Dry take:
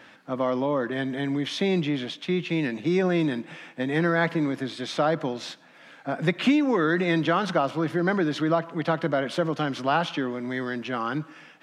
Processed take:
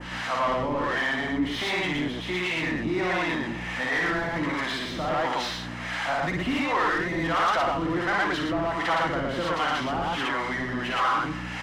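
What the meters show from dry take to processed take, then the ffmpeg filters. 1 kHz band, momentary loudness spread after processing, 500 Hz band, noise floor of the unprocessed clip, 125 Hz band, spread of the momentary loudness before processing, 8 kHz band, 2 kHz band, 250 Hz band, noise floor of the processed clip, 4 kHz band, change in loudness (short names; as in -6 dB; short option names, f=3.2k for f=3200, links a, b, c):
+3.5 dB, 5 LU, -3.5 dB, -52 dBFS, -4.5 dB, 9 LU, +3.5 dB, +4.0 dB, -4.5 dB, -34 dBFS, +3.0 dB, -0.5 dB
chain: -filter_complex "[0:a]aeval=exprs='val(0)+0.5*0.0178*sgn(val(0))':c=same,tiltshelf=f=1.3k:g=-6.5,aeval=exprs='val(0)+0.0126*(sin(2*PI*60*n/s)+sin(2*PI*2*60*n/s)/2+sin(2*PI*3*60*n/s)/3+sin(2*PI*4*60*n/s)/4+sin(2*PI*5*60*n/s)/5)':c=same,aecho=1:1:1:0.32,flanger=delay=5.5:depth=5.6:regen=-51:speed=1.1:shape=triangular,lowpass=6.5k,asplit=2[a][b];[b]aecho=0:1:55.39|116.6:0.708|1[c];[a][c]amix=inputs=2:normalize=0,adynamicequalizer=threshold=0.00794:dfrequency=4200:dqfactor=0.75:tfrequency=4200:tqfactor=0.75:attack=5:release=100:ratio=0.375:range=3.5:mode=cutabove:tftype=bell,asplit=2[d][e];[e]highpass=f=720:p=1,volume=24dB,asoftclip=type=tanh:threshold=-11dB[f];[d][f]amix=inputs=2:normalize=0,lowpass=f=1.4k:p=1,volume=-6dB,acrossover=split=500[g][h];[g]aeval=exprs='val(0)*(1-0.7/2+0.7/2*cos(2*PI*1.4*n/s))':c=same[i];[h]aeval=exprs='val(0)*(1-0.7/2-0.7/2*cos(2*PI*1.4*n/s))':c=same[j];[i][j]amix=inputs=2:normalize=0,volume=-1dB"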